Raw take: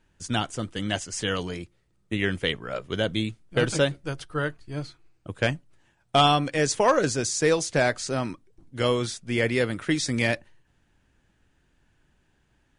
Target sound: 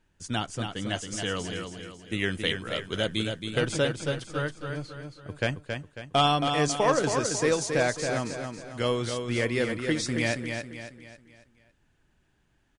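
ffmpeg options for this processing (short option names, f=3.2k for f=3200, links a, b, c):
-filter_complex "[0:a]asettb=1/sr,asplit=3[a][b][c];[a]atrim=end=1.564[d];[b]atrim=start=1.56:end=3.6,asetpts=PTS-STARTPTS,afade=t=in:d=0.004:c=qsin,afade=t=out:st=2.036:d=0.004:c=qsin,highshelf=f=3.9k:g=8.5[e];[c]atrim=start=3.596[f];[d][e]acrossfade=d=0.004:c1=hsin:c2=qsin[g];[g][f]acrossfade=d=0.004:c1=qsin:c2=hsin,asplit=2[h][i];[i]aecho=0:1:273|546|819|1092|1365:0.501|0.21|0.0884|0.0371|0.0156[j];[h][j]amix=inputs=2:normalize=0,volume=-3.5dB"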